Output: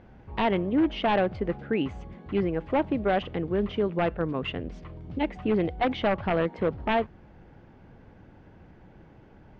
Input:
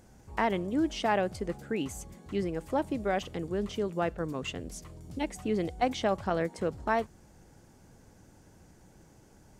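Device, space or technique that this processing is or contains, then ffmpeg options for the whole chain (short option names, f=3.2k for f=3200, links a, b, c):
synthesiser wavefolder: -af "aeval=exprs='0.075*(abs(mod(val(0)/0.075+3,4)-2)-1)':c=same,lowpass=f=3.1k:w=0.5412,lowpass=f=3.1k:w=1.3066,volume=5.5dB"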